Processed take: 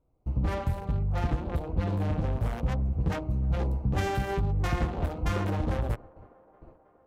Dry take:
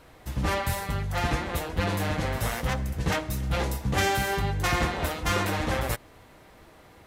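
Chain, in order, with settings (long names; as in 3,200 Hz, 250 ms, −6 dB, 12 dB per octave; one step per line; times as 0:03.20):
adaptive Wiener filter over 25 samples
noise gate with hold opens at −43 dBFS
spectral tilt −2 dB per octave
downward compressor 2 to 1, threshold −24 dBFS, peak gain reduction 5.5 dB
delay with a band-pass on its return 318 ms, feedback 73%, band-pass 640 Hz, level −22.5 dB
level −2 dB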